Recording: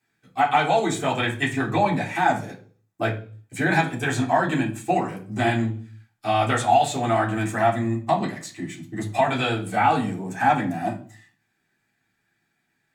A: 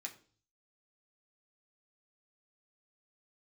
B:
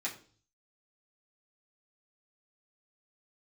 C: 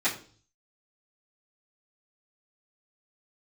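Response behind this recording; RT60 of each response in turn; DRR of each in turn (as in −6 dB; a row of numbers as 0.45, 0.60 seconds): B; 0.45, 0.45, 0.45 seconds; 0.0, −6.5, −14.0 decibels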